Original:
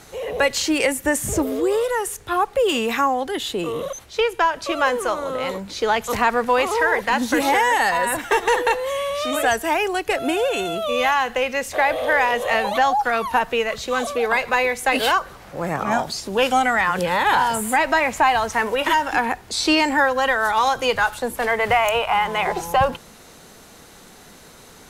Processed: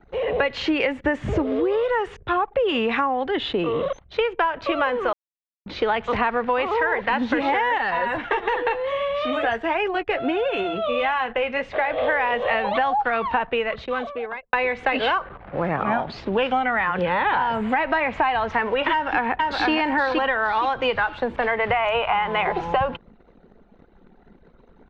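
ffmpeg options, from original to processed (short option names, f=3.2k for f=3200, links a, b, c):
-filter_complex "[0:a]asettb=1/sr,asplit=3[a][b][c];[a]atrim=end=7.784[d];[b]atrim=start=7.78:end=11.98,asetpts=PTS-STARTPTS,afade=t=in:d=0.004:c=qsin,afade=t=out:st=4.196:d=0.004:c=qsin,flanger=delay=4.8:depth=4.9:regen=-50:speed=1.5:shape=sinusoidal[e];[c]atrim=start=11.976[f];[d][e]acrossfade=d=0.004:c1=hsin:c2=qsin[g];[g][f]acrossfade=d=0.004:c1=qsin:c2=hsin,asplit=3[h][i][j];[h]afade=t=out:st=15.23:d=0.02[k];[i]adynamicequalizer=threshold=0.0126:dfrequency=4300:dqfactor=0.7:tfrequency=4300:tqfactor=0.7:attack=5:release=100:ratio=0.375:range=3.5:mode=cutabove:tftype=highshelf,afade=t=in:st=15.23:d=0.02,afade=t=out:st=17.88:d=0.02[l];[j]afade=t=in:st=17.88:d=0.02[m];[k][l][m]amix=inputs=3:normalize=0,asplit=2[n][o];[o]afade=t=in:st=18.92:d=0.01,afade=t=out:st=19.71:d=0.01,aecho=0:1:470|940|1410|1880:0.707946|0.212384|0.0637151|0.0191145[p];[n][p]amix=inputs=2:normalize=0,asplit=4[q][r][s][t];[q]atrim=end=5.13,asetpts=PTS-STARTPTS,afade=t=out:st=5.126:d=0.004:c=hsin[u];[r]atrim=start=5.13:end=5.66,asetpts=PTS-STARTPTS,volume=0[v];[s]atrim=start=5.66:end=14.53,asetpts=PTS-STARTPTS,afade=t=in:d=0.004:c=hsin,afade=t=out:st=7.55:d=1.32[w];[t]atrim=start=14.53,asetpts=PTS-STARTPTS,afade=t=in:d=0.004:c=hsin[x];[u][v][w][x]concat=n=4:v=0:a=1,anlmdn=0.398,lowpass=f=3.2k:w=0.5412,lowpass=f=3.2k:w=1.3066,acompressor=threshold=-24dB:ratio=4,volume=4.5dB"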